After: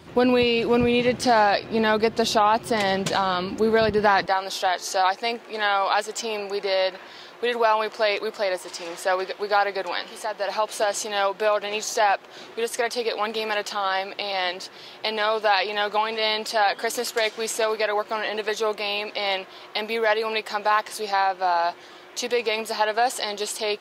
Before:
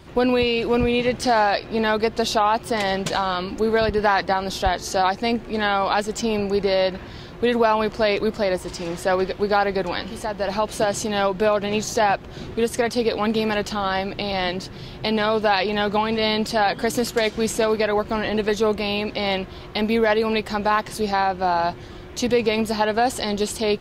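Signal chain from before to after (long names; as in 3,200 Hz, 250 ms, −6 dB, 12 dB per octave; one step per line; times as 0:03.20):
high-pass filter 100 Hz 12 dB per octave, from 0:04.26 550 Hz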